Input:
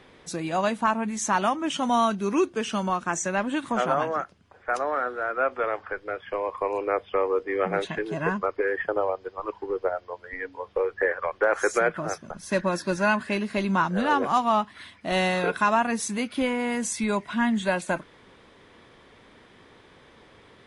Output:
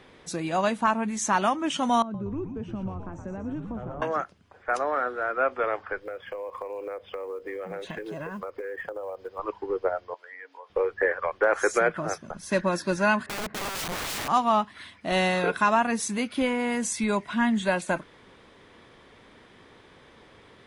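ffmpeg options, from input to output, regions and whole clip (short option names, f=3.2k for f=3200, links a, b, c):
-filter_complex "[0:a]asettb=1/sr,asplit=3[a][b][c];[a]atrim=end=2.024[d];[b]atrim=start=2.02:end=4.02,asetpts=PTS-STARTPTS,afade=t=in:d=0.004:c=qsin,afade=t=out:st=1.996:d=0.004:c=qsin,acompressor=threshold=-28dB:ratio=3:attack=3.2:release=140:knee=1:detection=peak,bandpass=f=190:t=q:w=0.73,asplit=8[e][f][g][h][i][j][k][l];[f]adelay=119,afreqshift=-100,volume=-6dB[m];[g]adelay=238,afreqshift=-200,volume=-11dB[n];[h]adelay=357,afreqshift=-300,volume=-16.1dB[o];[i]adelay=476,afreqshift=-400,volume=-21.1dB[p];[j]adelay=595,afreqshift=-500,volume=-26.1dB[q];[k]adelay=714,afreqshift=-600,volume=-31.2dB[r];[l]adelay=833,afreqshift=-700,volume=-36.2dB[s];[e][m][n][o][p][q][r][s]amix=inputs=8:normalize=0,atrim=end_sample=88200[t];[c]atrim=start=4.016[u];[d][t]acrossfade=d=0.004:c1=hsin:c2=qsin[v];[v][u]acrossfade=d=0.004:c1=qsin:c2=hsin,asettb=1/sr,asplit=3[w][x][y];[w]atrim=end=6.014[z];[x]atrim=start=6.01:end=9.39,asetpts=PTS-STARTPTS,afade=t=in:d=0.004:c=qsin,afade=t=out:st=3.376:d=0.004:c=qsin,acrusher=bits=8:mode=log:mix=0:aa=0.000001,equalizer=f=520:t=o:w=0.24:g=9.5,acompressor=threshold=-31dB:ratio=12:attack=3.2:release=140:knee=1:detection=peak[aa];[y]atrim=start=9.386[ab];[z][aa]acrossfade=d=0.004:c1=hsin:c2=qsin[ac];[ac][ab]acrossfade=d=0.004:c1=qsin:c2=hsin,asettb=1/sr,asplit=3[ad][ae][af];[ad]atrim=end=10.144[ag];[ae]atrim=start=10.14:end=10.7,asetpts=PTS-STARTPTS,afade=t=in:d=0.004:c=qsin,afade=t=out:st=0.556:d=0.004:c=qsin,highpass=620,acompressor=threshold=-43dB:ratio=2.5:attack=3.2:release=140:knee=1:detection=peak[ah];[af]atrim=start=10.696[ai];[ag][ah]acrossfade=d=0.004:c1=hsin:c2=qsin[aj];[aj][ai]acrossfade=d=0.004:c1=qsin:c2=hsin,asettb=1/sr,asplit=3[ak][al][am];[ak]atrim=end=13.264[an];[al]atrim=start=13.26:end=14.28,asetpts=PTS-STARTPTS,afade=t=in:d=0.004:c=qsin,afade=t=out:st=1.016:d=0.004:c=qsin,lowpass=1k,aeval=exprs='(mod(23.7*val(0)+1,2)-1)/23.7':c=same[ao];[am]atrim=start=14.276[ap];[an][ao]acrossfade=d=0.004:c1=hsin:c2=qsin[aq];[aq][ap]acrossfade=d=0.004:c1=qsin:c2=hsin"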